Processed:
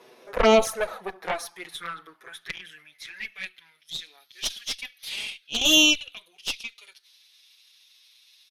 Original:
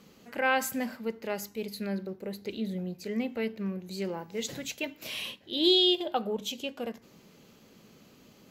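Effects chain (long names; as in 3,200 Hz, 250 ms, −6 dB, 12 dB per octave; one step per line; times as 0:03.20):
high-shelf EQ 3,300 Hz −5 dB
pitch shifter −3 semitones
high-pass filter sweep 510 Hz → 3,700 Hz, 0:00.47–0:03.96
harmonic generator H 3 −25 dB, 5 −21 dB, 6 −13 dB, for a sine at −11.5 dBFS
flanger swept by the level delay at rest 8.5 ms, full sweep at −19 dBFS
level +8 dB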